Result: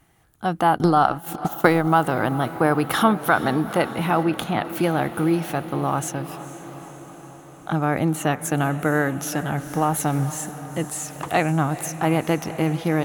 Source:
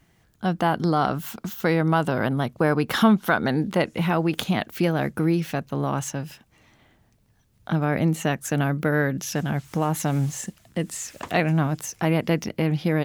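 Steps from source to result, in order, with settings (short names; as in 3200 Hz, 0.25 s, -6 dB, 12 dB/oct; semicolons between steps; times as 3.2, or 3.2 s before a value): on a send: diffused feedback echo 0.461 s, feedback 66%, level -14 dB; 0.77–1.88 on the sum: transient shaper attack +8 dB, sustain -11 dB; 4.23–4.65 high shelf 4200 Hz -7 dB; 9.59–10.15 added noise pink -52 dBFS; thirty-one-band EQ 200 Hz -6 dB, 315 Hz +3 dB, 800 Hz +7 dB, 1250 Hz +6 dB, 5000 Hz -4 dB, 10000 Hz +9 dB, 16000 Hz +7 dB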